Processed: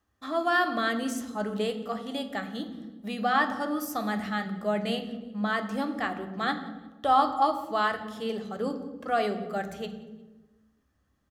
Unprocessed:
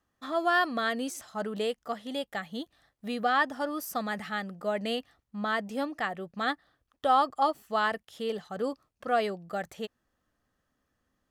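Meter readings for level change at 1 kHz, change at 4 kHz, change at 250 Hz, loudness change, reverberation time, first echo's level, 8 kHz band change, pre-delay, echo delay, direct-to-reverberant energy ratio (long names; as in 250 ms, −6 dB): +1.5 dB, +0.5 dB, +4.5 dB, +1.5 dB, 1.2 s, −23.0 dB, +0.5 dB, 3 ms, 177 ms, 6.0 dB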